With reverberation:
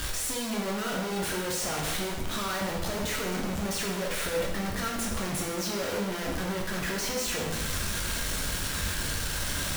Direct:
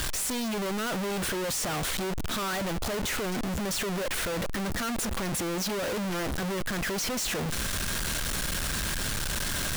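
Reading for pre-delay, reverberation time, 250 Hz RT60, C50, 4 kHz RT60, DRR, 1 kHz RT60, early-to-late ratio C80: 5 ms, 1.0 s, 0.95 s, 3.0 dB, 0.90 s, -2.0 dB, 1.0 s, 5.5 dB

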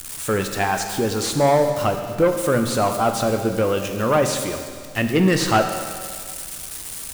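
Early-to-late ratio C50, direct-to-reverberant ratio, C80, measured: 6.5 dB, 5.0 dB, 7.5 dB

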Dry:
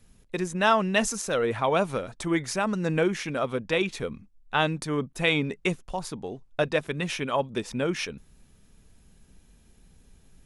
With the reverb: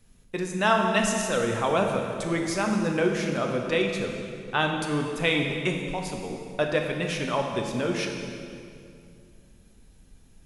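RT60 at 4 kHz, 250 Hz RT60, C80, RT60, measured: 2.0 s, 2.8 s, 4.5 dB, 2.4 s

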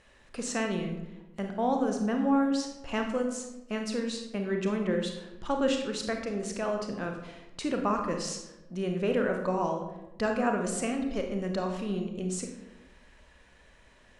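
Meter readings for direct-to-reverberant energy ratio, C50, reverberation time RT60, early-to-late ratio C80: 3.0 dB, 5.5 dB, 1.0 s, 8.0 dB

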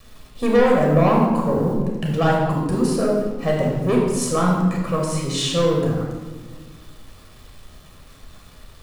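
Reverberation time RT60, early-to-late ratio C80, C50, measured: 1.5 s, 3.5 dB, 1.0 dB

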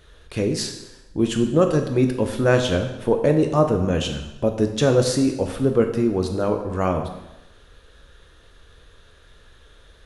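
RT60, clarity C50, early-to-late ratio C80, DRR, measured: 0.95 s, 8.0 dB, 10.0 dB, 4.5 dB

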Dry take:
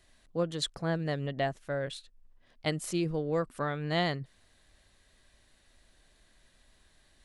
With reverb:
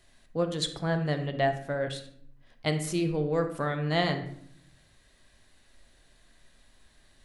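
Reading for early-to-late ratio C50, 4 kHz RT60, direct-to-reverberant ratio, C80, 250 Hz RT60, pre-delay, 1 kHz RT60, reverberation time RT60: 9.0 dB, 0.45 s, 6.0 dB, 12.5 dB, 1.0 s, 7 ms, 0.60 s, 0.65 s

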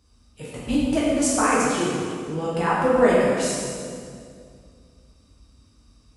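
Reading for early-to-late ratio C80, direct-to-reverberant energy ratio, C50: -0.5 dB, -7.5 dB, -2.0 dB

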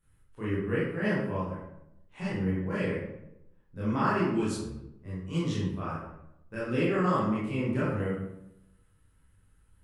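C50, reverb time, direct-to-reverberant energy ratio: -0.5 dB, 0.85 s, -10.0 dB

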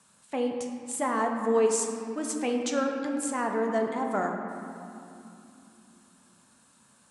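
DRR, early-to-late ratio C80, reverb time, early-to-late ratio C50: 2.0 dB, 4.5 dB, 3.0 s, 3.5 dB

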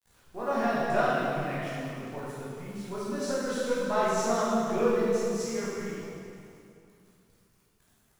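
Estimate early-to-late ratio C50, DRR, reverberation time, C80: -3.5 dB, -9.5 dB, 2.5 s, -2.0 dB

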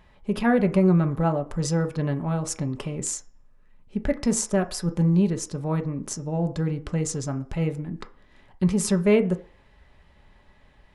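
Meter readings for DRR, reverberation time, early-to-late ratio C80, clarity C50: 5.5 dB, 0.45 s, 20.5 dB, 16.0 dB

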